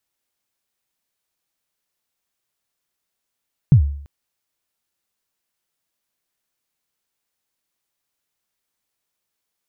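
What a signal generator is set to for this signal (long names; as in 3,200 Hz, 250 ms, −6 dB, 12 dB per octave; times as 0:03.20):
synth kick length 0.34 s, from 160 Hz, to 71 Hz, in 94 ms, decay 0.60 s, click off, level −4 dB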